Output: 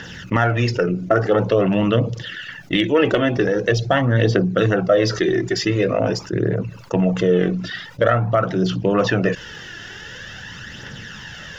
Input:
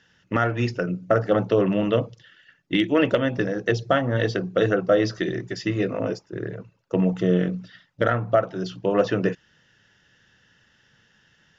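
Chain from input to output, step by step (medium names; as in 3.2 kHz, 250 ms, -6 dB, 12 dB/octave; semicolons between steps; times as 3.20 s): phaser 0.46 Hz, delay 3 ms, feedback 48%; level flattener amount 50%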